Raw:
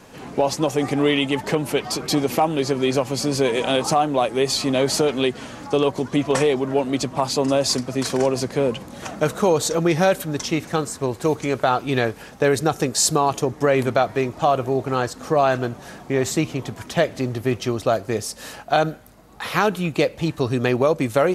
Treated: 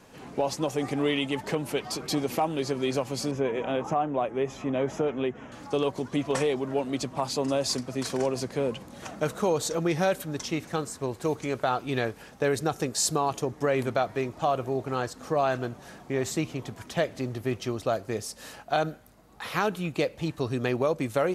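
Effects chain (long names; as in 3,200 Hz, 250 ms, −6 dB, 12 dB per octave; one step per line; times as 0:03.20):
0:03.31–0:05.52: moving average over 10 samples
level −7.5 dB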